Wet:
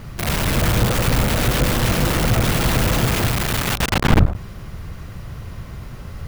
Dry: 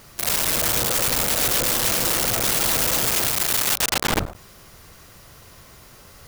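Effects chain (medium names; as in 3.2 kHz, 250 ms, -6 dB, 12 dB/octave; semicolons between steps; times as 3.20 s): tone controls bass +13 dB, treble -11 dB; in parallel at -2.5 dB: peak limiter -22 dBFS, peak gain reduction 18 dB; on the sum: trim +1.5 dB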